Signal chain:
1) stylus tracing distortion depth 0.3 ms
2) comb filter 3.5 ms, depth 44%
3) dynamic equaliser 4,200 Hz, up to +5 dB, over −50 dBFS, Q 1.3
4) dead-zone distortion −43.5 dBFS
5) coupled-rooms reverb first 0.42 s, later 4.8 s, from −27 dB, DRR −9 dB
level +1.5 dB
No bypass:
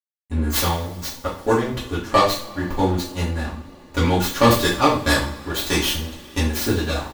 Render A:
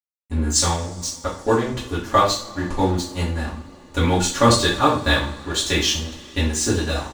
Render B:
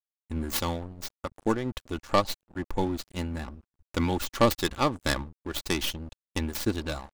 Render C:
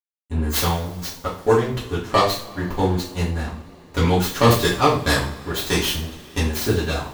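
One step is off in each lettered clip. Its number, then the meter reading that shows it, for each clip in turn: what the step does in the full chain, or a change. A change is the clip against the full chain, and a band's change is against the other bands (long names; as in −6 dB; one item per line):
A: 1, 8 kHz band +6.0 dB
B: 5, change in crest factor +2.0 dB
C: 2, 125 Hz band +2.5 dB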